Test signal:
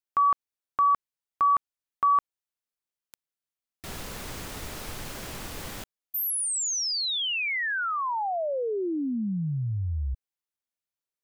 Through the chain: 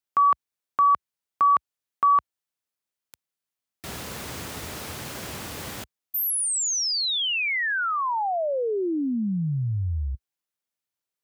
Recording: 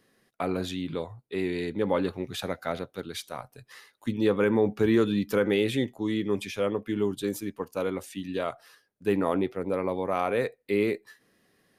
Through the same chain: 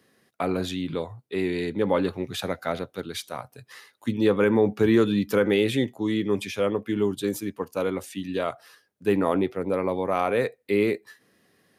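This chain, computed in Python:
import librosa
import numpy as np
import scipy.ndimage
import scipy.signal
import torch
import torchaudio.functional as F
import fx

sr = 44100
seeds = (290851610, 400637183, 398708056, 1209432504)

y = scipy.signal.sosfilt(scipy.signal.butter(4, 64.0, 'highpass', fs=sr, output='sos'), x)
y = F.gain(torch.from_numpy(y), 3.0).numpy()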